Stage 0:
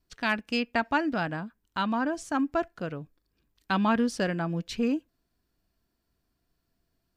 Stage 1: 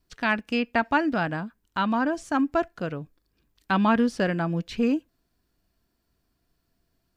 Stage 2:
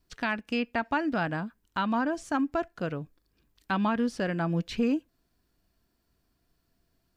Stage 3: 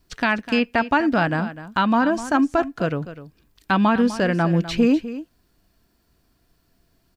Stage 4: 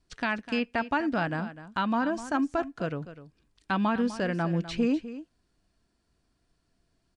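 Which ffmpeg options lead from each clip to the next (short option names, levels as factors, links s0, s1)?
-filter_complex "[0:a]acrossover=split=3200[s0][s1];[s1]acompressor=threshold=0.00562:ratio=4:attack=1:release=60[s2];[s0][s2]amix=inputs=2:normalize=0,volume=1.5"
-af "alimiter=limit=0.126:level=0:latency=1:release=387"
-af "aecho=1:1:251:0.2,volume=2.82"
-af "aresample=22050,aresample=44100,volume=0.376"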